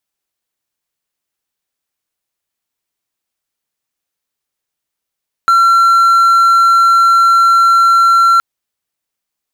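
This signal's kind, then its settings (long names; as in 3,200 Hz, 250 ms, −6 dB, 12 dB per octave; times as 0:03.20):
tone triangle 1,360 Hz −3.5 dBFS 2.92 s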